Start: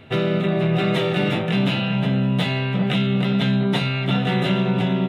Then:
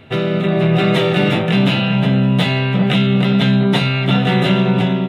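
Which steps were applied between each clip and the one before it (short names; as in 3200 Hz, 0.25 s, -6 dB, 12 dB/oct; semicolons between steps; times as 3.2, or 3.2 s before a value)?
AGC gain up to 3.5 dB; gain +2.5 dB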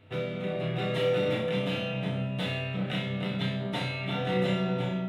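resonator 100 Hz, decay 0.38 s, harmonics odd, mix 80%; on a send: flutter echo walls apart 5.5 m, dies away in 0.52 s; on the sum: gain -5.5 dB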